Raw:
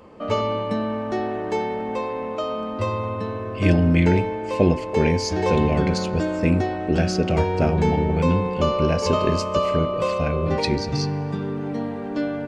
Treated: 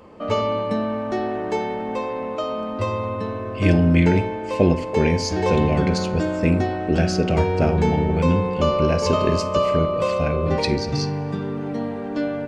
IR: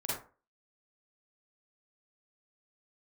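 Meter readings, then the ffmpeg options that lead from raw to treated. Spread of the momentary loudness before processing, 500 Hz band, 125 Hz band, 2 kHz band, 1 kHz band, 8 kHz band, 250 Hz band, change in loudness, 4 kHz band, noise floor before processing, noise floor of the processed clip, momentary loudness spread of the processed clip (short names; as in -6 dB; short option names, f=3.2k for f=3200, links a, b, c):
8 LU, +1.0 dB, +1.0 dB, +1.0 dB, +0.5 dB, +1.0 dB, +1.0 dB, +1.0 dB, +1.0 dB, -30 dBFS, -29 dBFS, 8 LU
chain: -filter_complex "[0:a]asplit=2[a][b];[1:a]atrim=start_sample=2205[c];[b][c]afir=irnorm=-1:irlink=0,volume=-16.5dB[d];[a][d]amix=inputs=2:normalize=0"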